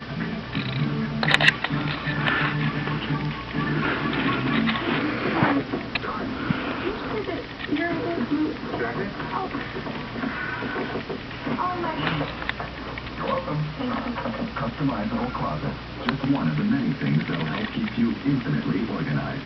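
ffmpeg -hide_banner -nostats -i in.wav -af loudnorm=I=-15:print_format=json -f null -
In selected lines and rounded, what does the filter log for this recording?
"input_i" : "-25.7",
"input_tp" : "-1.7",
"input_lra" : "4.9",
"input_thresh" : "-35.7",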